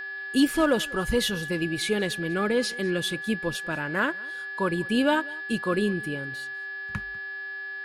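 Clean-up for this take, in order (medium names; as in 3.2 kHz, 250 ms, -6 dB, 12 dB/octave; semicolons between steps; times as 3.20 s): clip repair -12.5 dBFS; de-hum 392.2 Hz, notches 13; band-stop 1.7 kHz, Q 30; inverse comb 196 ms -23 dB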